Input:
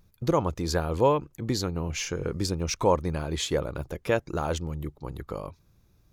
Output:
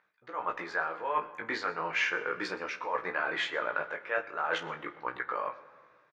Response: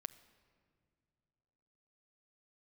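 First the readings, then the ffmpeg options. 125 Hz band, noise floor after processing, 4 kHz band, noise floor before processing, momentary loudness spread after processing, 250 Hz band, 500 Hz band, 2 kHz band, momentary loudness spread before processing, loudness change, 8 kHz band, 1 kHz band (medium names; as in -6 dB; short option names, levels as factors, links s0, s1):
-26.0 dB, -66 dBFS, -5.0 dB, -64 dBFS, 8 LU, -14.5 dB, -9.5 dB, +8.0 dB, 13 LU, -4.5 dB, -18.0 dB, -1.5 dB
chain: -filter_complex "[0:a]highpass=650,lowpass=2200,areverse,acompressor=threshold=0.0126:ratio=16,areverse,flanger=delay=15.5:depth=3.6:speed=0.36,equalizer=f=1700:w=1.1:g=14,asplit=2[s0][s1];[s1]adelay=32,volume=0.224[s2];[s0][s2]amix=inputs=2:normalize=0,aecho=1:1:122:0.0944[s3];[1:a]atrim=start_sample=2205[s4];[s3][s4]afir=irnorm=-1:irlink=0,dynaudnorm=f=120:g=7:m=2.24,volume=1.78"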